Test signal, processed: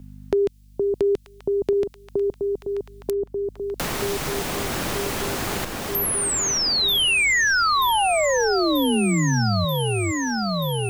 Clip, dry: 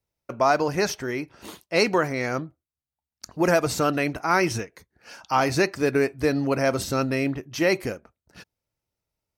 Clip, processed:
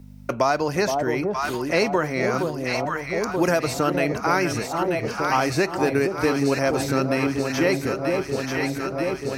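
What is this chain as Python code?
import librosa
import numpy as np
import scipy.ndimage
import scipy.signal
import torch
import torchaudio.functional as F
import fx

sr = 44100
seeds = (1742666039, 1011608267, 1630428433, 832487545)

y = fx.echo_alternate(x, sr, ms=467, hz=900.0, feedback_pct=78, wet_db=-5.5)
y = fx.add_hum(y, sr, base_hz=50, snr_db=34)
y = fx.band_squash(y, sr, depth_pct=70)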